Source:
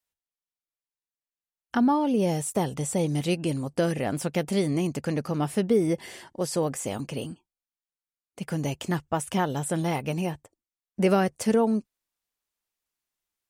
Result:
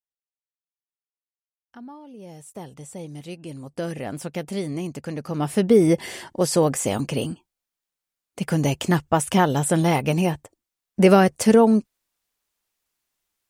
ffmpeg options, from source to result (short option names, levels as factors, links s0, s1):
-af "volume=2.37,afade=t=in:st=2.16:d=0.53:silence=0.375837,afade=t=in:st=3.41:d=0.54:silence=0.421697,afade=t=in:st=5.2:d=0.63:silence=0.298538"